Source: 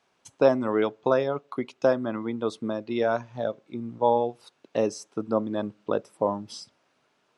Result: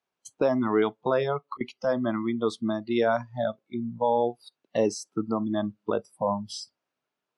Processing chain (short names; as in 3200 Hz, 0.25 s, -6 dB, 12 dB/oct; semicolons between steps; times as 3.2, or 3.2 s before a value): limiter -16.5 dBFS, peak gain reduction 9.5 dB; spectral noise reduction 20 dB; 1.13–1.61 auto swell 0.242 s; gain +3.5 dB